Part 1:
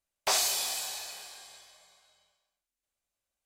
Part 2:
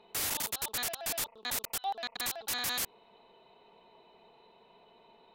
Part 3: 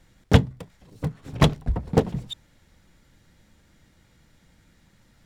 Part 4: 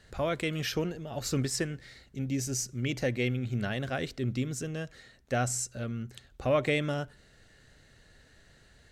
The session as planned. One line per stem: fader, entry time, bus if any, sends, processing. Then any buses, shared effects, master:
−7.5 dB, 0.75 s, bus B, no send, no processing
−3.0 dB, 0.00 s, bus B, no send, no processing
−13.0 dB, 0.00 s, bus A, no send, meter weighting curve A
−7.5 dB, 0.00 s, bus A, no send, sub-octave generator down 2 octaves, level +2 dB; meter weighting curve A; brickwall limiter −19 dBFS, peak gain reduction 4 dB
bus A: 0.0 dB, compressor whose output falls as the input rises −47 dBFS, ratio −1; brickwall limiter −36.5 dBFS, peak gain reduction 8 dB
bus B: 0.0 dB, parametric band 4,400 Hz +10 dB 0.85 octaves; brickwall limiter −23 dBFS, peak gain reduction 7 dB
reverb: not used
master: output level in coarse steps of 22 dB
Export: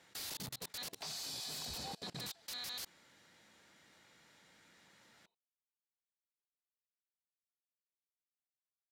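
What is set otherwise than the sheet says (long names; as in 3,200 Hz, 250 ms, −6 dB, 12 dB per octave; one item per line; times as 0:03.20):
stem 2 −3.0 dB → −12.0 dB
stem 3 −13.0 dB → −2.0 dB
stem 4: muted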